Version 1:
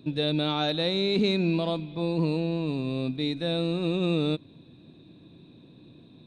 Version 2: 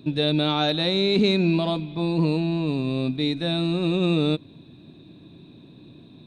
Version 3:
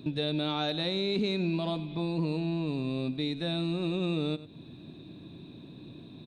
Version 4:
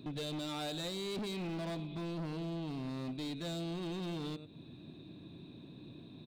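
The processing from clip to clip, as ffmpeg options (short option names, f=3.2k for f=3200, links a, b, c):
-af "bandreject=f=500:w=12,volume=4.5dB"
-af "aecho=1:1:96:0.126,acompressor=threshold=-34dB:ratio=2"
-af "volume=32dB,asoftclip=hard,volume=-32dB,volume=-4.5dB"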